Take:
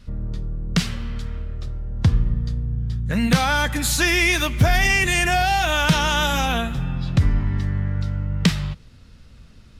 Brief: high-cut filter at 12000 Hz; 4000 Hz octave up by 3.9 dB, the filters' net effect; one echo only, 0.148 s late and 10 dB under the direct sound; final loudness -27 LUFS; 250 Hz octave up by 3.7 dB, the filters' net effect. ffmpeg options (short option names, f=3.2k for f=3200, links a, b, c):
-af "lowpass=12k,equalizer=f=250:t=o:g=5.5,equalizer=f=4k:t=o:g=5,aecho=1:1:148:0.316,volume=-8.5dB"